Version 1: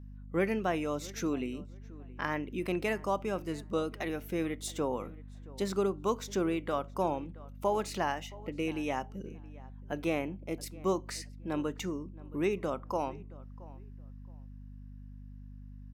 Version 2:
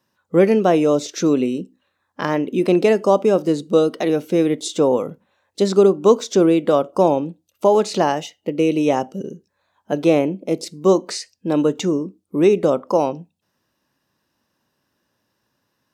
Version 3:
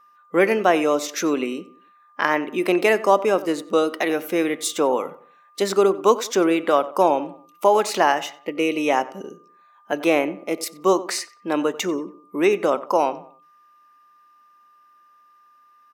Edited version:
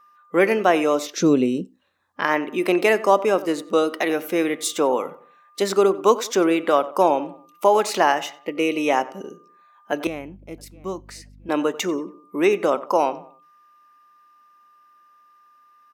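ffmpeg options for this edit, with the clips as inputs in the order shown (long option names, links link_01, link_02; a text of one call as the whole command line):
ffmpeg -i take0.wav -i take1.wav -i take2.wav -filter_complex "[2:a]asplit=3[link_01][link_02][link_03];[link_01]atrim=end=1.17[link_04];[1:a]atrim=start=1.01:end=2.29[link_05];[link_02]atrim=start=2.13:end=10.072[link_06];[0:a]atrim=start=10.068:end=11.492[link_07];[link_03]atrim=start=11.488[link_08];[link_04][link_05]acrossfade=duration=0.16:curve1=tri:curve2=tri[link_09];[link_09][link_06]acrossfade=duration=0.16:curve1=tri:curve2=tri[link_10];[link_10][link_07]acrossfade=duration=0.004:curve1=hsin:curve2=hsin[link_11];[link_11][link_08]acrossfade=duration=0.004:curve1=hsin:curve2=hsin" out.wav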